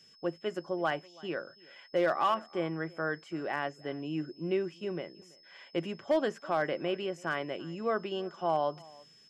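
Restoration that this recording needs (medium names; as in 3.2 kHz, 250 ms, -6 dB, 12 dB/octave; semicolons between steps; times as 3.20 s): clip repair -20 dBFS; band-stop 5.2 kHz, Q 30; inverse comb 331 ms -24 dB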